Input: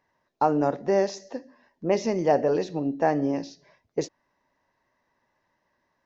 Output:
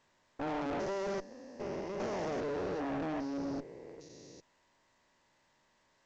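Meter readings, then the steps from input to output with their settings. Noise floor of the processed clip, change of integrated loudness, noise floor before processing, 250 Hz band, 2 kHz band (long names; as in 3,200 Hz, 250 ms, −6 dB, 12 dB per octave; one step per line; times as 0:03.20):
−72 dBFS, −11.5 dB, −75 dBFS, −10.0 dB, −7.0 dB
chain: spectrum averaged block by block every 400 ms
tube saturation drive 33 dB, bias 0.7
A-law companding 128 kbit/s 16,000 Hz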